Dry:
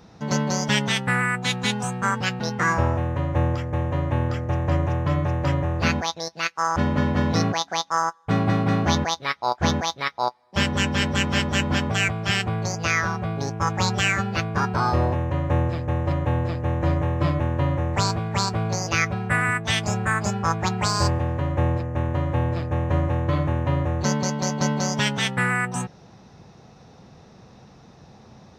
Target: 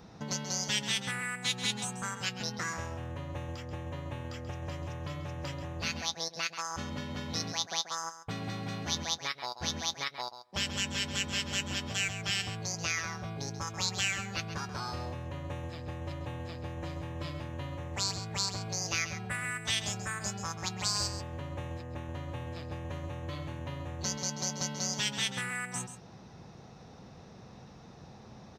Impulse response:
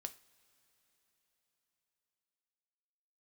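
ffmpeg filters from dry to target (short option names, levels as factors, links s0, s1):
-filter_complex "[0:a]acrossover=split=2800[s0][s1];[s0]acompressor=threshold=0.0178:ratio=5[s2];[s2][s1]amix=inputs=2:normalize=0,aecho=1:1:134:0.282,volume=0.708"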